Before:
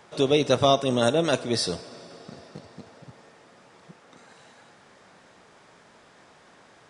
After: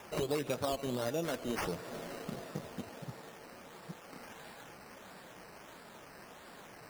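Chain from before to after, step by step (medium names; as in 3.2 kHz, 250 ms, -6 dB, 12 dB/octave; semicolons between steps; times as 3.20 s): in parallel at -3 dB: peak limiter -16 dBFS, peak gain reduction 8.5 dB; on the sum: compression 4:1, threshold -31 dBFS, peak gain reduction 16 dB; flange 1.4 Hz, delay 3 ms, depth 3.9 ms, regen -50%; decimation with a swept rate 10×, swing 60% 1.5 Hz; trim +1 dB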